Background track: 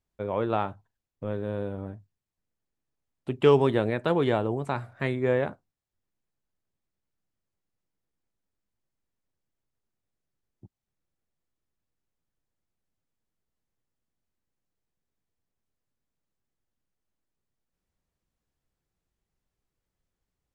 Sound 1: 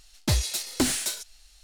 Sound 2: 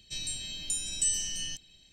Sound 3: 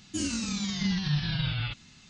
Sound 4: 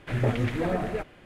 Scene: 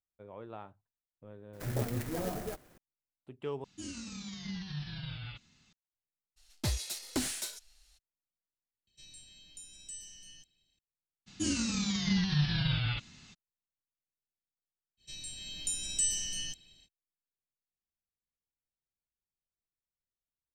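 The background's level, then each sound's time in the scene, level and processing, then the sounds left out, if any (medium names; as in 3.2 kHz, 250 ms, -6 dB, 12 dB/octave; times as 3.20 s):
background track -19 dB
1.53 s: add 4 -8.5 dB + sampling jitter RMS 0.082 ms
3.64 s: replace with 3 -12 dB
6.36 s: add 1 -9 dB, fades 0.02 s
8.87 s: replace with 2 -17.5 dB
11.26 s: add 3 -1 dB, fades 0.02 s
14.97 s: add 2 -9 dB, fades 0.05 s + level rider gain up to 7 dB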